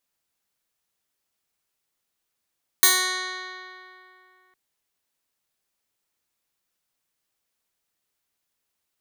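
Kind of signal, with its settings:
Karplus-Strong string F#4, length 1.71 s, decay 2.78 s, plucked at 0.14, bright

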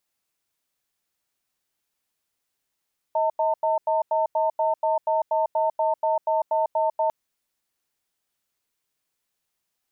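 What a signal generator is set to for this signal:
tone pair in a cadence 634 Hz, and 901 Hz, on 0.15 s, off 0.09 s, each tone −22 dBFS 3.95 s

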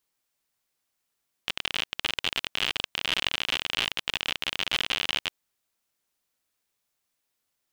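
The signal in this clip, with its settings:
Geiger counter clicks 59 per second −10.5 dBFS 3.81 s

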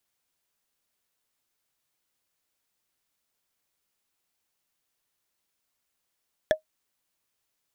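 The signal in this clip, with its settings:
struck wood, lowest mode 625 Hz, decay 0.11 s, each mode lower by 5 dB, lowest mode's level −13 dB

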